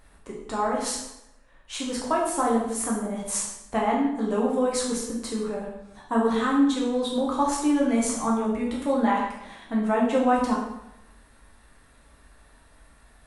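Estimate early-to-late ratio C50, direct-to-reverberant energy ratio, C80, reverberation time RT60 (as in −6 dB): 3.0 dB, −4.0 dB, 6.0 dB, 0.85 s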